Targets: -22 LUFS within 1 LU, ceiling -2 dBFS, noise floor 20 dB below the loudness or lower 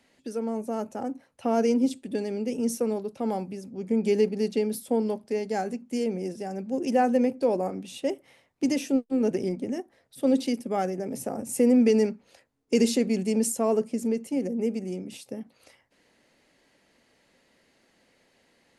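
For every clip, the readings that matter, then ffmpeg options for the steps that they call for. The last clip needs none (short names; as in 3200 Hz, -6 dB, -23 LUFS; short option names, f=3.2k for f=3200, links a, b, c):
loudness -27.0 LUFS; peak -11.0 dBFS; loudness target -22.0 LUFS
-> -af "volume=5dB"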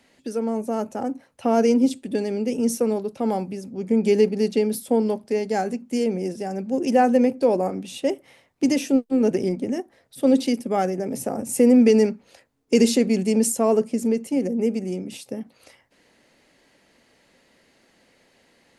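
loudness -22.0 LUFS; peak -6.0 dBFS; noise floor -61 dBFS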